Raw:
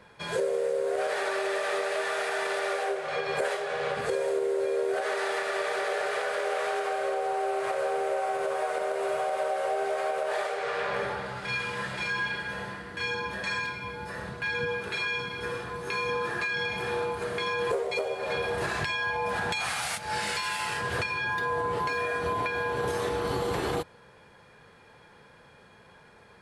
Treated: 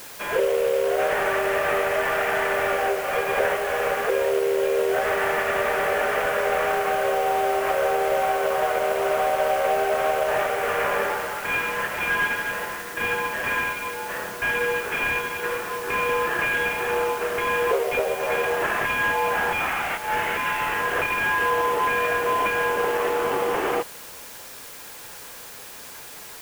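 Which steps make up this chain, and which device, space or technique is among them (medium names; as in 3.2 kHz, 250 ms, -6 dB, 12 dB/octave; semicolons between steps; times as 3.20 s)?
army field radio (band-pass 370–3200 Hz; CVSD coder 16 kbps; white noise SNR 17 dB); trim +8 dB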